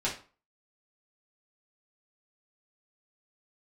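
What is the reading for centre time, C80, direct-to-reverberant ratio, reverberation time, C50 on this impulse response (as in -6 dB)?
22 ms, 14.5 dB, -8.0 dB, 0.40 s, 8.5 dB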